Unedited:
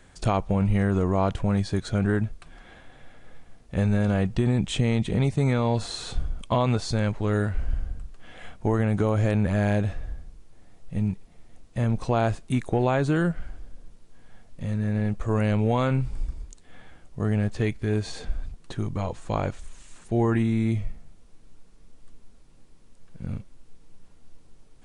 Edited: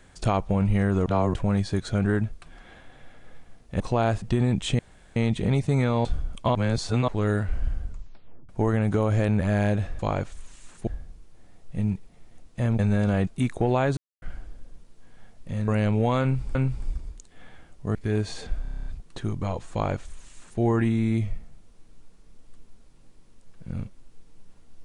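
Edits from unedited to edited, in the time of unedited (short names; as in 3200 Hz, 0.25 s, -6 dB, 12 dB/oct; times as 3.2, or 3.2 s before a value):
1.06–1.34 reverse
3.8–4.28 swap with 11.97–12.39
4.85 insert room tone 0.37 s
5.74–6.11 cut
6.61–7.14 reverse
7.92 tape stop 0.63 s
13.09–13.34 mute
14.8–15.34 cut
15.88–16.21 loop, 2 plays
17.28–17.73 cut
18.4 stutter 0.03 s, 9 plays
19.26–20.14 copy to 10.05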